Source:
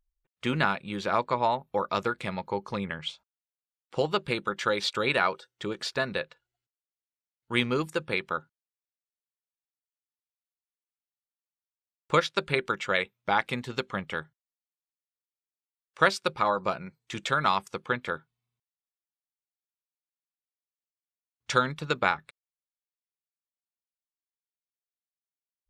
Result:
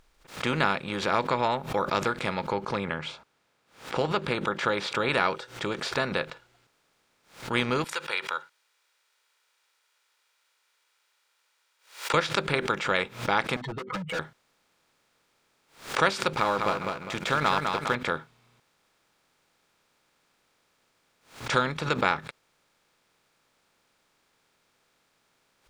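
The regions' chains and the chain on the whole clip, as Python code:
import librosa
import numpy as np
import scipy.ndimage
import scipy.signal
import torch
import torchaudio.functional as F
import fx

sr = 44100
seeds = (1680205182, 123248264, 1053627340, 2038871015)

y = fx.chain(x, sr, fx.highpass(hz=44.0, slope=12),
    fx.high_shelf(hz=4300.0, db=-10.0), at=(2.52, 5.09))
y = fx.chain(y, sr, fx.highpass(hz=1500.0, slope=12),
    fx.comb(ms=2.1, depth=0.49), at=(7.84, 12.14))
y = fx.chain(y, sr, fx.spec_expand(power=3.3),
    fx.clip_hard(threshold_db=-34.5),
    fx.comb(ms=6.3, depth=0.98), at=(13.56, 14.19))
y = fx.chain(y, sr, fx.law_mismatch(coded='A'),
    fx.echo_feedback(ms=203, feedback_pct=19, wet_db=-7.5), at=(16.33, 17.95))
y = fx.bin_compress(y, sr, power=0.6)
y = fx.low_shelf(y, sr, hz=64.0, db=6.0)
y = fx.pre_swell(y, sr, db_per_s=140.0)
y = F.gain(torch.from_numpy(y), -3.5).numpy()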